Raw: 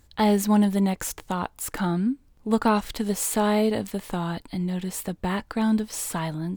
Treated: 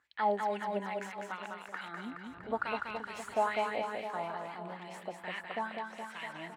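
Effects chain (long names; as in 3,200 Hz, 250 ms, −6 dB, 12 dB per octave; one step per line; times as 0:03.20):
0:02.12–0:03.34: wind on the microphone 110 Hz −23 dBFS
LFO wah 2.3 Hz 660–2,500 Hz, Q 3.5
reverse bouncing-ball delay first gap 200 ms, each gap 1.1×, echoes 5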